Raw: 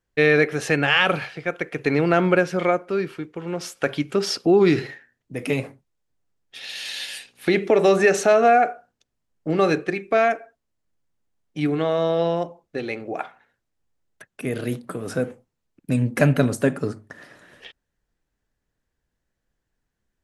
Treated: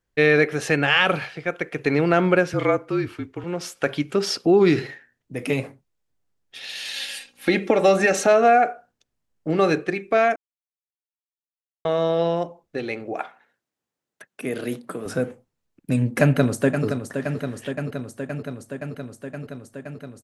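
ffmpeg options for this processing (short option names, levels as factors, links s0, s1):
-filter_complex "[0:a]asettb=1/sr,asplit=3[s0][s1][s2];[s0]atrim=end=2.534[s3];[s1]atrim=start=2.53:end=3.44,asetpts=PTS-STARTPTS,afade=t=in:d=0.004:c=qsin,afade=t=out:st=0.906:d=0.004:c=qsin,afreqshift=-41[s4];[s2]atrim=start=3.436[s5];[s3][s4]acrossfade=d=0.004:c1=hsin:c2=qsin[s6];[s6][s5]acrossfade=d=0.004:c1=qsin:c2=hsin,asettb=1/sr,asplit=3[s7][s8][s9];[s7]atrim=end=6.944[s10];[s8]atrim=start=6.94:end=8.27,asetpts=PTS-STARTPTS,afade=t=in:d=0.004:c=qsin,afade=t=out:st=1.326:d=0.004:c=qsin,aecho=1:1:3.7:0.57,atrim=end_sample=58653[s11];[s9]atrim=start=8.266[s12];[s10][s11]acrossfade=d=0.004:c1=hsin:c2=qsin[s13];[s13][s12]acrossfade=d=0.004:c1=qsin:c2=hsin,asettb=1/sr,asplit=3[s14][s15][s16];[s14]atrim=end=13.144[s17];[s15]atrim=start=13.14:end=15.06,asetpts=PTS-STARTPTS,afade=t=in:d=0.004:c=qsin,afade=t=out:st=1.916:d=0.004:c=qsin,highpass=190[s18];[s16]atrim=start=15.056[s19];[s17][s18]acrossfade=d=0.004:c1=hsin:c2=qsin[s20];[s20][s19]acrossfade=d=0.004:c1=qsin:c2=hsin,asplit=2[s21][s22];[s22]afade=t=in:st=16.21:d=0.01,afade=t=out:st=16.86:d=0.01,aecho=0:1:520|1040|1560|2080|2600|3120|3640|4160|4680|5200|5720|6240:0.398107|0.318486|0.254789|0.203831|0.163065|0.130452|0.104361|0.0834891|0.0667913|0.053433|0.0427464|0.0341971[s23];[s21][s23]amix=inputs=2:normalize=0,asplit=3[s24][s25][s26];[s24]atrim=end=10.36,asetpts=PTS-STARTPTS,afade=t=out:st=10.356:d=0.004:c=hsin[s27];[s25]atrim=start=10.36:end=11.85,asetpts=PTS-STARTPTS,volume=0[s28];[s26]atrim=start=11.85,asetpts=PTS-STARTPTS,afade=t=in:d=0.004:c=hsin[s29];[s27][s28][s29]concat=n=3:v=0:a=1"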